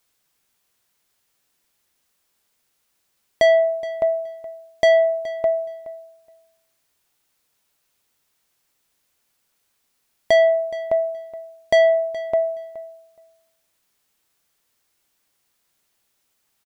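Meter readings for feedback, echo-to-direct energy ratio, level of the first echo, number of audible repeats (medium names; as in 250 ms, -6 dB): 16%, -17.0 dB, -17.0 dB, 2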